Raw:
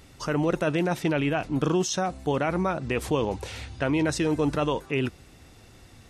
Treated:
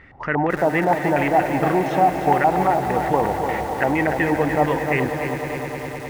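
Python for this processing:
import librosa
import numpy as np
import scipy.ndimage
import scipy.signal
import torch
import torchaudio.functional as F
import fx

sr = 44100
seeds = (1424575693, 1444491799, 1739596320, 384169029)

y = fx.filter_lfo_lowpass(x, sr, shape='square', hz=4.3, low_hz=820.0, high_hz=1900.0, q=7.2)
y = fx.echo_swell(y, sr, ms=103, loudest=5, wet_db=-15.0)
y = fx.echo_crushed(y, sr, ms=294, feedback_pct=55, bits=6, wet_db=-7.5)
y = y * librosa.db_to_amplitude(1.0)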